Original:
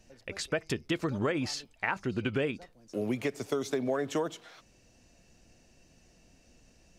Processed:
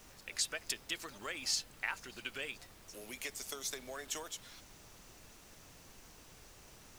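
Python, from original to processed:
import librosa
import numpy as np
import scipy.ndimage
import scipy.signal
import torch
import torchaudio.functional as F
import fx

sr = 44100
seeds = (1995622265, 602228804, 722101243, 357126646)

y = np.diff(x, prepend=0.0)
y = fx.dmg_noise_colour(y, sr, seeds[0], colour='pink', level_db=-64.0)
y = F.gain(torch.from_numpy(y), 6.0).numpy()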